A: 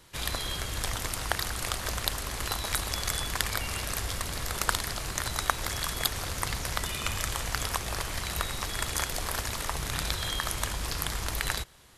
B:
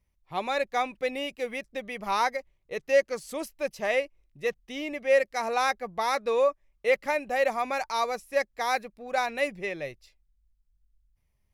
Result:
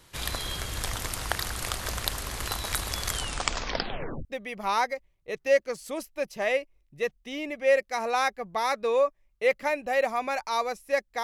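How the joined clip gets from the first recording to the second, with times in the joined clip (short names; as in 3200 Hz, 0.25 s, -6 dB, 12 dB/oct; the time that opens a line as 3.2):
A
3.07 tape stop 1.18 s
4.25 switch to B from 1.68 s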